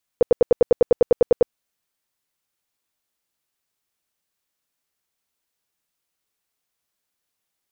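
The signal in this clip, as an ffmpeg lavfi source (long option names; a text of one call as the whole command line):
ffmpeg -f lavfi -i "aevalsrc='0.355*sin(2*PI*482*mod(t,0.1))*lt(mod(t,0.1),8/482)':duration=1.3:sample_rate=44100" out.wav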